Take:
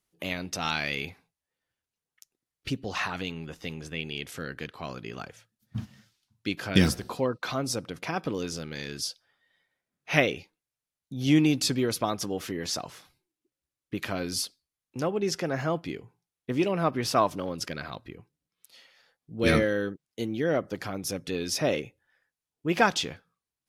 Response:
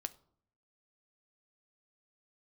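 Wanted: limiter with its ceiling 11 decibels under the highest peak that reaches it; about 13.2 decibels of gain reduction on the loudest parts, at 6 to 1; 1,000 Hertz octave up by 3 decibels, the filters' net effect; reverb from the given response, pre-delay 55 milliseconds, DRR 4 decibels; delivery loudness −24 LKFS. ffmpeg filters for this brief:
-filter_complex "[0:a]equalizer=frequency=1000:width_type=o:gain=4,acompressor=threshold=-29dB:ratio=6,alimiter=level_in=3dB:limit=-24dB:level=0:latency=1,volume=-3dB,asplit=2[link_01][link_02];[1:a]atrim=start_sample=2205,adelay=55[link_03];[link_02][link_03]afir=irnorm=-1:irlink=0,volume=-2dB[link_04];[link_01][link_04]amix=inputs=2:normalize=0,volume=13dB"

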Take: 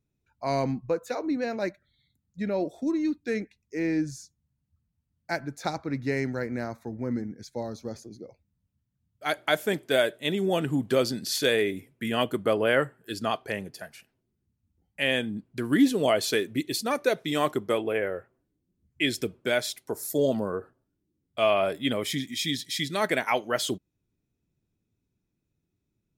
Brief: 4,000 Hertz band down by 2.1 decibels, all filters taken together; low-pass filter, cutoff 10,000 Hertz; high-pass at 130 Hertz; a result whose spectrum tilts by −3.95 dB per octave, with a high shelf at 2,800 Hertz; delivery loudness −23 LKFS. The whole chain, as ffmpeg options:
ffmpeg -i in.wav -af "highpass=130,lowpass=10000,highshelf=frequency=2800:gain=6,equalizer=frequency=4000:width_type=o:gain=-7.5,volume=5dB" out.wav

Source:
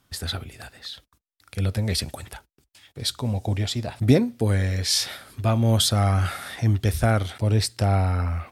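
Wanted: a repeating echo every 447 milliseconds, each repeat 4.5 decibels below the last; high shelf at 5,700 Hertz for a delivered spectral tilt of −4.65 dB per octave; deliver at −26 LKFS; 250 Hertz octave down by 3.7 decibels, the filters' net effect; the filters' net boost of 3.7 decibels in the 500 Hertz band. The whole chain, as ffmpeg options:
ffmpeg -i in.wav -af "equalizer=frequency=250:width_type=o:gain=-6,equalizer=frequency=500:width_type=o:gain=6,highshelf=frequency=5700:gain=7,aecho=1:1:447|894|1341|1788|2235|2682|3129|3576|4023:0.596|0.357|0.214|0.129|0.0772|0.0463|0.0278|0.0167|0.01,volume=-4.5dB" out.wav

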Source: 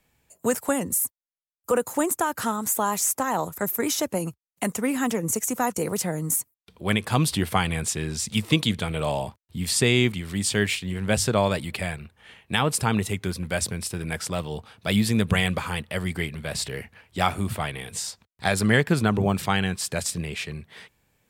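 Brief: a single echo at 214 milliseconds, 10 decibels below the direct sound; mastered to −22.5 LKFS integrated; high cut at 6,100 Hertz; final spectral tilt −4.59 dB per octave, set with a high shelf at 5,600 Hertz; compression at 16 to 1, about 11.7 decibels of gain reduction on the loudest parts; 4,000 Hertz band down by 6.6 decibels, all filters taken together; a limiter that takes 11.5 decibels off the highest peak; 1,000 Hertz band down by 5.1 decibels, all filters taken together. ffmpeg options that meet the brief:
ffmpeg -i in.wav -af "lowpass=6100,equalizer=frequency=1000:width_type=o:gain=-6.5,equalizer=frequency=4000:width_type=o:gain=-9,highshelf=frequency=5600:gain=3,acompressor=threshold=-27dB:ratio=16,alimiter=level_in=0.5dB:limit=-24dB:level=0:latency=1,volume=-0.5dB,aecho=1:1:214:0.316,volume=13dB" out.wav

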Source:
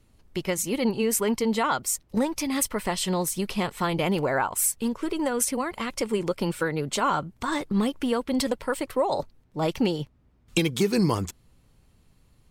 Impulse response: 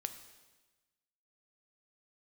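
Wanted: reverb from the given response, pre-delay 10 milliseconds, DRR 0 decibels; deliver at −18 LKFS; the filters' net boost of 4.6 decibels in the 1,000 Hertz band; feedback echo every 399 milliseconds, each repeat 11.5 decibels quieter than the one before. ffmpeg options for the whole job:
-filter_complex "[0:a]equalizer=frequency=1000:width_type=o:gain=5.5,aecho=1:1:399|798|1197:0.266|0.0718|0.0194,asplit=2[link_01][link_02];[1:a]atrim=start_sample=2205,adelay=10[link_03];[link_02][link_03]afir=irnorm=-1:irlink=0,volume=1.5dB[link_04];[link_01][link_04]amix=inputs=2:normalize=0,volume=4dB"

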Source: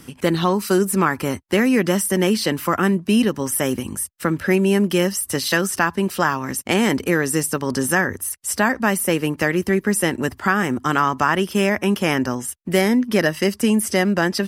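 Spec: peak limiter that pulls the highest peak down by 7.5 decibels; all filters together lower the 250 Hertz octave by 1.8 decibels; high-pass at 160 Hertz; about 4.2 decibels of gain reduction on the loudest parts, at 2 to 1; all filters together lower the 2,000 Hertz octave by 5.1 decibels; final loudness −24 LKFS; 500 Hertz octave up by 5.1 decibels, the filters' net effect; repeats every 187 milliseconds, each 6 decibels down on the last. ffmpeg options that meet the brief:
ffmpeg -i in.wav -af "highpass=160,equalizer=frequency=250:width_type=o:gain=-4,equalizer=frequency=500:width_type=o:gain=8.5,equalizer=frequency=2000:width_type=o:gain=-7,acompressor=threshold=-18dB:ratio=2,alimiter=limit=-13dB:level=0:latency=1,aecho=1:1:187|374|561|748|935|1122:0.501|0.251|0.125|0.0626|0.0313|0.0157,volume=-1.5dB" out.wav

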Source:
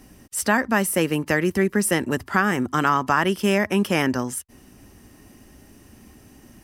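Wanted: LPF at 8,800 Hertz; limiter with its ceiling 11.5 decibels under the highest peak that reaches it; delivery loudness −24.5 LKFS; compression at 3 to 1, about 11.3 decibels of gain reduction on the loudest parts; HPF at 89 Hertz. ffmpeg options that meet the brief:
ffmpeg -i in.wav -af "highpass=89,lowpass=8800,acompressor=threshold=-31dB:ratio=3,volume=12.5dB,alimiter=limit=-14dB:level=0:latency=1" out.wav

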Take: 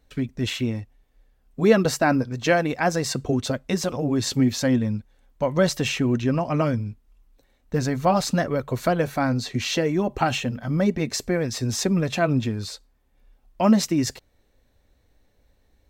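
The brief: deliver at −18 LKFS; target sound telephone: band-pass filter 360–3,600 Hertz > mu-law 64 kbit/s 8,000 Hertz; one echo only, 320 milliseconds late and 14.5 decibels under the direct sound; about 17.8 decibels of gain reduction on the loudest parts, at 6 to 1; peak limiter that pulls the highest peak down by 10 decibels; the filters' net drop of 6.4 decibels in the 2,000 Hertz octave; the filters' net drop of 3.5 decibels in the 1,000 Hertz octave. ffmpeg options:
ffmpeg -i in.wav -af "equalizer=frequency=1000:width_type=o:gain=-3.5,equalizer=frequency=2000:width_type=o:gain=-7,acompressor=threshold=-32dB:ratio=6,alimiter=level_in=6dB:limit=-24dB:level=0:latency=1,volume=-6dB,highpass=360,lowpass=3600,aecho=1:1:320:0.188,volume=27dB" -ar 8000 -c:a pcm_mulaw out.wav

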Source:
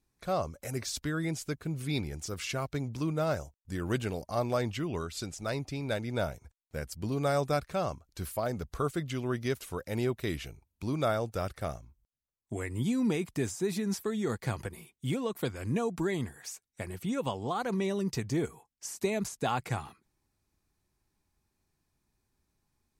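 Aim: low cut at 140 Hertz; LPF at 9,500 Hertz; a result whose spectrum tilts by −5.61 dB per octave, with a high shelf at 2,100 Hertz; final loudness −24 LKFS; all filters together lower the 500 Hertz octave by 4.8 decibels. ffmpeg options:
ffmpeg -i in.wav -af "highpass=140,lowpass=9500,equalizer=frequency=500:width_type=o:gain=-6,highshelf=frequency=2100:gain=-4.5,volume=13dB" out.wav

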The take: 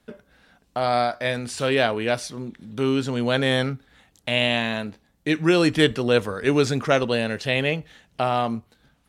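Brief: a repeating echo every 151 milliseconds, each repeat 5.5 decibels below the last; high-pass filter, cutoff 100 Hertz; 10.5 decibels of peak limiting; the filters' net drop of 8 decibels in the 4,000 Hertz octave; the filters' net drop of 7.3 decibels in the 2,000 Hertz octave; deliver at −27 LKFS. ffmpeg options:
ffmpeg -i in.wav -af "highpass=100,equalizer=frequency=2000:width_type=o:gain=-7.5,equalizer=frequency=4000:width_type=o:gain=-7.5,alimiter=limit=-17.5dB:level=0:latency=1,aecho=1:1:151|302|453|604|755|906|1057:0.531|0.281|0.149|0.079|0.0419|0.0222|0.0118,volume=1dB" out.wav

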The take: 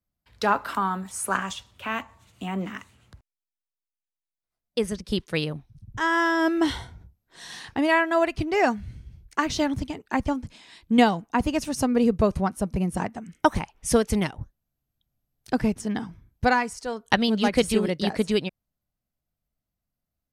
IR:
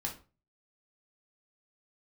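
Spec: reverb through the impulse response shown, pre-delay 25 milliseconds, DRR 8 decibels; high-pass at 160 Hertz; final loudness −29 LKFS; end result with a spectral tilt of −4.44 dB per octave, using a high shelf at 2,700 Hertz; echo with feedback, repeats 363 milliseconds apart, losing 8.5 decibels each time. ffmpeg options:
-filter_complex "[0:a]highpass=160,highshelf=frequency=2700:gain=-8.5,aecho=1:1:363|726|1089|1452:0.376|0.143|0.0543|0.0206,asplit=2[link_01][link_02];[1:a]atrim=start_sample=2205,adelay=25[link_03];[link_02][link_03]afir=irnorm=-1:irlink=0,volume=-9dB[link_04];[link_01][link_04]amix=inputs=2:normalize=0,volume=-3.5dB"

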